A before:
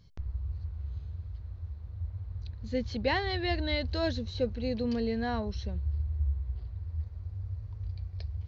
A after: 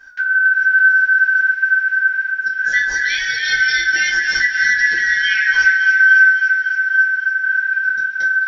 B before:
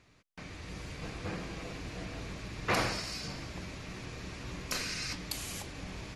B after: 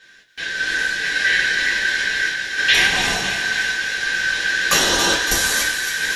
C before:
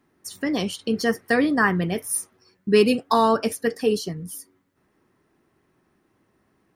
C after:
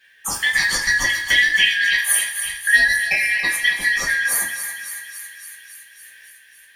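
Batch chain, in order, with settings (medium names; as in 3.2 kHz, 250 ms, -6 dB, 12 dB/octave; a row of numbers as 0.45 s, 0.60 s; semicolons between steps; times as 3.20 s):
four frequency bands reordered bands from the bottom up 4123; compression 10:1, threshold -32 dBFS; random-step tremolo 3.5 Hz, depth 55%; on a send: thinning echo 279 ms, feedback 70%, high-pass 1.1 kHz, level -8.5 dB; on the sum: two-slope reverb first 0.23 s, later 1.7 s, from -18 dB, DRR -6.5 dB; peak normalisation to -3 dBFS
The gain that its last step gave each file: +12.5 dB, +14.0 dB, +12.0 dB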